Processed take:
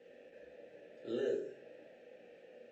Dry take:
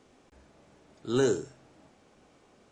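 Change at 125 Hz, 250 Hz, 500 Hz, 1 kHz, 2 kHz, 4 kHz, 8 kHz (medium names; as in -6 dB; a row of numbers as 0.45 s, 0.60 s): -22.5 dB, -12.0 dB, -8.5 dB, -17.0 dB, -12.0 dB, -14.0 dB, under -25 dB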